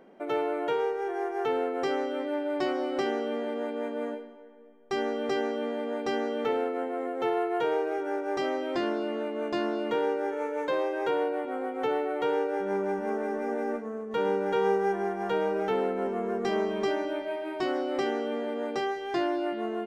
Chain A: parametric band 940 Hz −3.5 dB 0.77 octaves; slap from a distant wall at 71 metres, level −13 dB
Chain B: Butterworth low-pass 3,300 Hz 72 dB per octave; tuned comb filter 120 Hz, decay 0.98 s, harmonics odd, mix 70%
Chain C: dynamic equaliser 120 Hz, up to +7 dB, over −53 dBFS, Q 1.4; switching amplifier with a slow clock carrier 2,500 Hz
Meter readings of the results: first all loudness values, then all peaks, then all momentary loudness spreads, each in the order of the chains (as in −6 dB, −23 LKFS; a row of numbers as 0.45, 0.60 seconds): −30.5, −40.0, −29.5 LKFS; −15.5, −25.0, −15.5 dBFS; 4, 4, 4 LU